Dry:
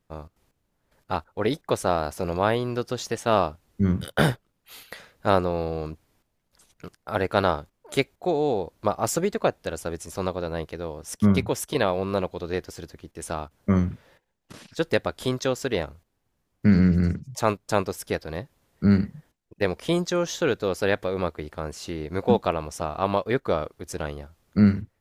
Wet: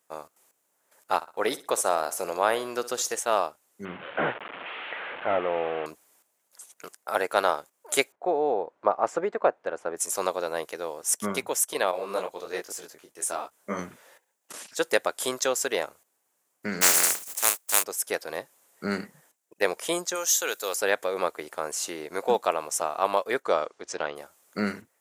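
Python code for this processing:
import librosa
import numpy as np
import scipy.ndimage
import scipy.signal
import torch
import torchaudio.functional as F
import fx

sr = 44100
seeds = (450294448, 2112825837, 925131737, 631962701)

y = fx.echo_feedback(x, sr, ms=62, feedback_pct=31, wet_db=-16, at=(1.15, 3.19))
y = fx.delta_mod(y, sr, bps=16000, step_db=-32.0, at=(3.85, 5.86))
y = fx.lowpass(y, sr, hz=1600.0, slope=12, at=(8.12, 9.97))
y = fx.detune_double(y, sr, cents=43, at=(11.91, 13.79))
y = fx.spec_flatten(y, sr, power=0.27, at=(16.81, 17.82), fade=0.02)
y = fx.riaa(y, sr, side='recording', at=(20.14, 20.74), fade=0.02)
y = fx.lowpass(y, sr, hz=fx.line((23.42, 9100.0), (24.15, 4200.0)), slope=24, at=(23.42, 24.15), fade=0.02)
y = scipy.signal.sosfilt(scipy.signal.butter(2, 530.0, 'highpass', fs=sr, output='sos'), y)
y = fx.high_shelf_res(y, sr, hz=5800.0, db=8.0, q=1.5)
y = fx.rider(y, sr, range_db=4, speed_s=0.5)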